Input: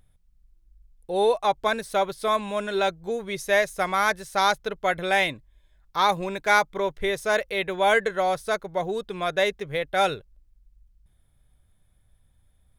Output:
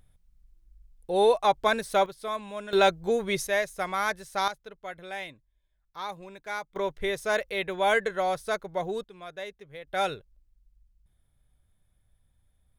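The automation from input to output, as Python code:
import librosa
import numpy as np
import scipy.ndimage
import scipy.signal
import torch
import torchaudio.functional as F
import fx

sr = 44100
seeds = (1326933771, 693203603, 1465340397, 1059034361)

y = fx.gain(x, sr, db=fx.steps((0.0, 0.0), (2.06, -9.0), (2.73, 3.0), (3.47, -5.5), (4.48, -15.0), (6.76, -3.5), (9.04, -15.5), (9.87, -5.5)))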